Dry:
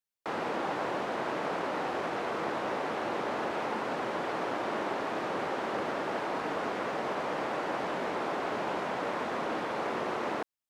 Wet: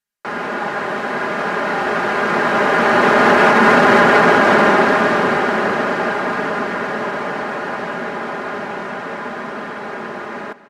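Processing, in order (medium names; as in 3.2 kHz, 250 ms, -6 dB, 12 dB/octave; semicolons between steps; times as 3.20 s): Doppler pass-by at 3.89 s, 14 m/s, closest 7.4 m; fifteen-band graphic EQ 100 Hz +8 dB, 250 Hz +4 dB, 1.6 kHz +8 dB; delay 195 ms -16 dB; resampled via 32 kHz; band-stop 3.5 kHz, Q 29; comb 4.9 ms, depth 59%; loudness maximiser +23.5 dB; trim -1 dB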